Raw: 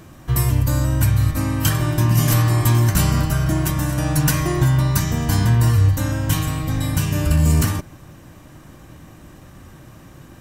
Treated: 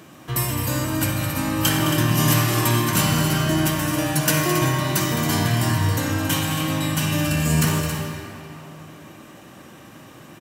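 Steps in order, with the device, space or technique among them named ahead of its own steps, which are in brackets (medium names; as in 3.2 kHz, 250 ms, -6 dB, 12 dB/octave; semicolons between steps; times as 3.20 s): stadium PA (high-pass 190 Hz 12 dB/octave; peaking EQ 2.9 kHz +4 dB 0.66 oct; loudspeakers at several distances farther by 73 m -11 dB, 94 m -10 dB; reverberation RT60 3.2 s, pre-delay 43 ms, DRR 2.5 dB)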